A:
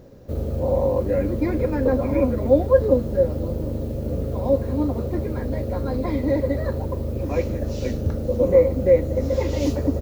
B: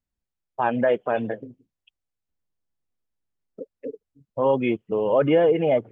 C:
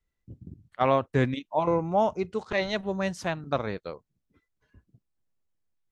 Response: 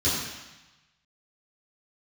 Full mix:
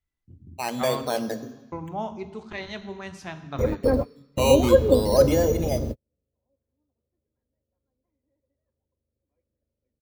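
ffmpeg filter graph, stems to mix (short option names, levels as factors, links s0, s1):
-filter_complex "[0:a]acrossover=split=2600[s0][s1];[s1]acompressor=threshold=0.00316:ratio=4:attack=1:release=60[s2];[s0][s2]amix=inputs=2:normalize=0,adelay=2000,volume=0.891[s3];[1:a]dynaudnorm=f=290:g=7:m=4.47,acrusher=samples=10:mix=1:aa=0.000001:lfo=1:lforange=6:lforate=0.5,volume=0.355,asplit=3[s4][s5][s6];[s5]volume=0.0708[s7];[2:a]equalizer=f=540:t=o:w=0.48:g=-8.5,volume=0.531,asplit=3[s8][s9][s10];[s8]atrim=end=1.03,asetpts=PTS-STARTPTS,afade=t=out:st=1.026:d=0.004:c=hsin[s11];[s9]atrim=start=1.03:end=1.72,asetpts=PTS-STARTPTS,volume=0[s12];[s10]atrim=start=1.72,asetpts=PTS-STARTPTS,afade=t=in:d=0.004:c=hsin[s13];[s11][s12][s13]concat=n=3:v=0:a=1,asplit=2[s14][s15];[s15]volume=0.0891[s16];[s6]apad=whole_len=529666[s17];[s3][s17]sidechaingate=range=0.00158:threshold=0.00631:ratio=16:detection=peak[s18];[3:a]atrim=start_sample=2205[s19];[s7][s16]amix=inputs=2:normalize=0[s20];[s20][s19]afir=irnorm=-1:irlink=0[s21];[s18][s4][s14][s21]amix=inputs=4:normalize=0"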